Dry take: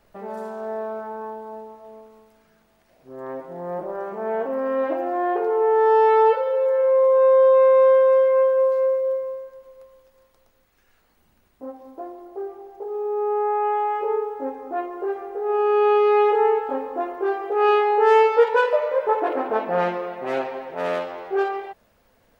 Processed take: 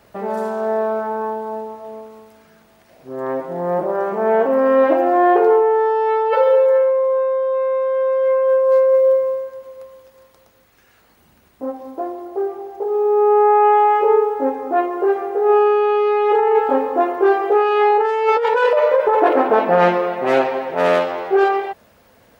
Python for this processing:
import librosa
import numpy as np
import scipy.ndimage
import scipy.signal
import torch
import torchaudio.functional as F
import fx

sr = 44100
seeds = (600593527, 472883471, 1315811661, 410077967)

y = scipy.signal.sosfilt(scipy.signal.butter(2, 62.0, 'highpass', fs=sr, output='sos'), x)
y = fx.over_compress(y, sr, threshold_db=-21.0, ratio=-1.0)
y = F.gain(torch.from_numpy(y), 7.0).numpy()